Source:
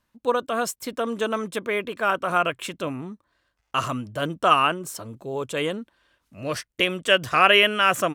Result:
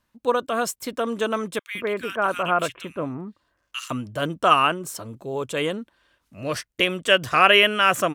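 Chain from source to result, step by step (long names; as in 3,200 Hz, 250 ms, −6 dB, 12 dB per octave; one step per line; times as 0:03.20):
0:01.59–0:03.91: multiband delay without the direct sound highs, lows 160 ms, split 2,000 Hz
level +1 dB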